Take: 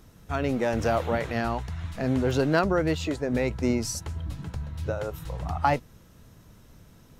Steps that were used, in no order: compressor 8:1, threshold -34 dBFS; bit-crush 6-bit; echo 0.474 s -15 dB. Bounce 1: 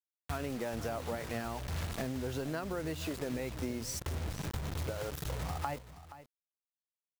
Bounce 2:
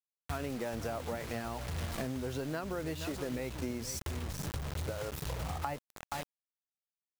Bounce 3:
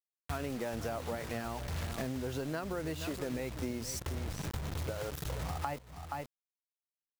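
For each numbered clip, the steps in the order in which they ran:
bit-crush > compressor > echo; echo > bit-crush > compressor; bit-crush > echo > compressor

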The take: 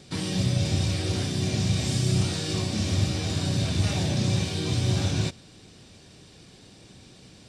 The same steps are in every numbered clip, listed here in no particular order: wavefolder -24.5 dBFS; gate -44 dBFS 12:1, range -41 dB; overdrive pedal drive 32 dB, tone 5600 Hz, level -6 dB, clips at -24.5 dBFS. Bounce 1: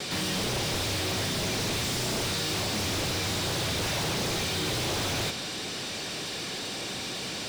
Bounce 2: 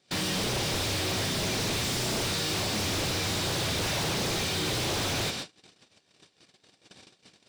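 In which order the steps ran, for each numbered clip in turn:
wavefolder > overdrive pedal > gate; wavefolder > gate > overdrive pedal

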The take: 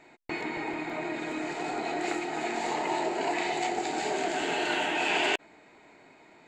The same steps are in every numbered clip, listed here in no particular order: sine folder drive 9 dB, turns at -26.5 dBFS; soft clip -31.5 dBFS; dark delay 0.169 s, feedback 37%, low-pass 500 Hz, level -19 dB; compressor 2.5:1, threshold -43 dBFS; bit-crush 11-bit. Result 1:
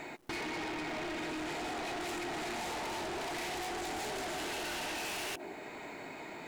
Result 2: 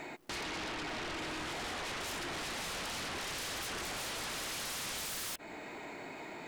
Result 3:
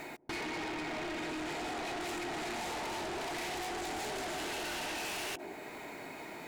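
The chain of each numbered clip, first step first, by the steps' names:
dark delay > soft clip > sine folder > compressor > bit-crush; sine folder > dark delay > bit-crush > compressor > soft clip; bit-crush > dark delay > soft clip > sine folder > compressor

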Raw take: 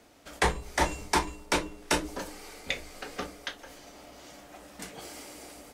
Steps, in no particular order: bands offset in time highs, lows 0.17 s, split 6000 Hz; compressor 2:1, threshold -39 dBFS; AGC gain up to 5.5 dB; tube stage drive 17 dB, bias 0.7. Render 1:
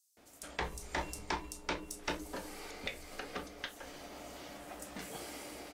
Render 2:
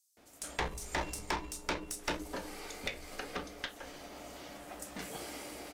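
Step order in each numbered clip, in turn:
AGC > compressor > tube stage > bands offset in time; bands offset in time > AGC > tube stage > compressor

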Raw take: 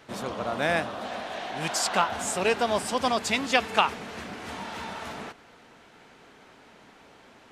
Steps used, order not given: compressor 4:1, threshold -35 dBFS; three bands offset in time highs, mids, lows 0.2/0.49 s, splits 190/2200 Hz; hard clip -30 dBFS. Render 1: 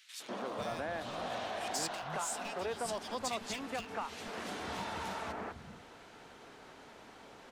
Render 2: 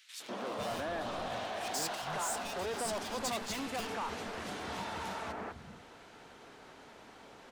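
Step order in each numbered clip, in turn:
compressor > hard clip > three bands offset in time; hard clip > compressor > three bands offset in time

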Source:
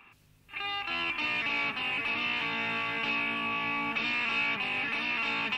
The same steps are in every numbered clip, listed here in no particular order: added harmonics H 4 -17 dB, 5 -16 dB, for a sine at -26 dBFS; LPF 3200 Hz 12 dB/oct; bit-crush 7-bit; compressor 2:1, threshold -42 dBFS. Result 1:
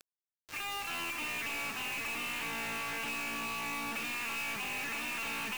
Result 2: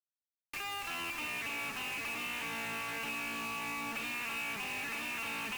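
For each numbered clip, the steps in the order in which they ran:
LPF > added harmonics > compressor > bit-crush; LPF > bit-crush > added harmonics > compressor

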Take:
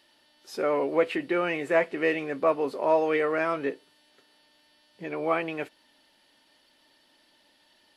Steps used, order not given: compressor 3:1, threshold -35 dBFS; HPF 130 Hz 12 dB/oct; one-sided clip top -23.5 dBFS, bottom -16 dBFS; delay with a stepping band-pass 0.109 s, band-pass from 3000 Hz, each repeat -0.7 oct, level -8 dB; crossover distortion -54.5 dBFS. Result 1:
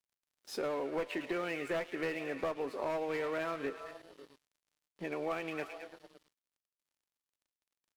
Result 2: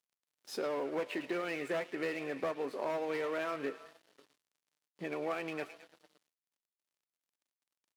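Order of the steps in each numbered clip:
HPF > one-sided clip > delay with a stepping band-pass > compressor > crossover distortion; one-sided clip > compressor > delay with a stepping band-pass > crossover distortion > HPF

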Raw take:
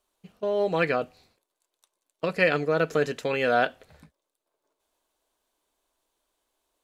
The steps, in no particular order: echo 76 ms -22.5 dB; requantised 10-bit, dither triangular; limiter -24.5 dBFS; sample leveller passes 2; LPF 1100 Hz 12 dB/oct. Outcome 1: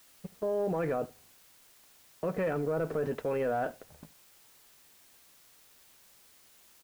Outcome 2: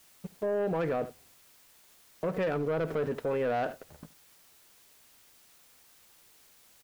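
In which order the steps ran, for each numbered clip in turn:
sample leveller > LPF > limiter > echo > requantised; LPF > sample leveller > requantised > echo > limiter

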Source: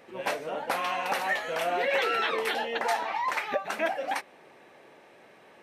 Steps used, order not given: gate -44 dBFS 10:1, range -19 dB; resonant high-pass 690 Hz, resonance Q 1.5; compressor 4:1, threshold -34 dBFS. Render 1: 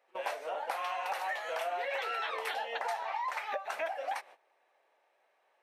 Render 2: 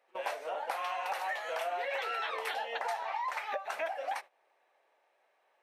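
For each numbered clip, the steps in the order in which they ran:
resonant high-pass > gate > compressor; resonant high-pass > compressor > gate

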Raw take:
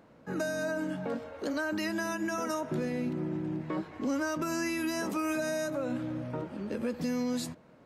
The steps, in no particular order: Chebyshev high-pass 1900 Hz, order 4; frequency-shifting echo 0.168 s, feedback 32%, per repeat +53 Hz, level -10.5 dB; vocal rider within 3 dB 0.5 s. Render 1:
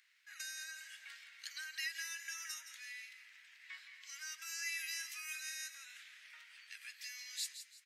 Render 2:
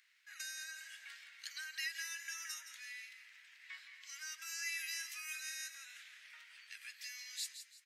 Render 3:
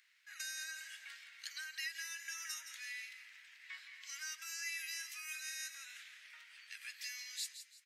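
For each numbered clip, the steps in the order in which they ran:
vocal rider > Chebyshev high-pass > frequency-shifting echo; frequency-shifting echo > vocal rider > Chebyshev high-pass; Chebyshev high-pass > frequency-shifting echo > vocal rider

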